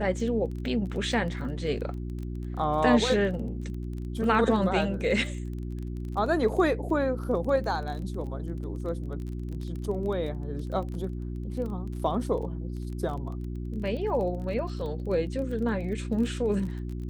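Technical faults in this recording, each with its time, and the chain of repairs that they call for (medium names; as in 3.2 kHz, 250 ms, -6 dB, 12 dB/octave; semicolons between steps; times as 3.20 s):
crackle 22 per s -35 dBFS
hum 60 Hz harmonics 6 -34 dBFS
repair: de-click; de-hum 60 Hz, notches 6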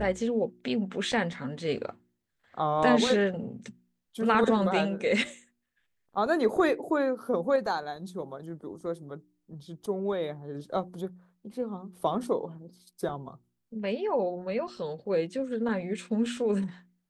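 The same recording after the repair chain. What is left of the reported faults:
nothing left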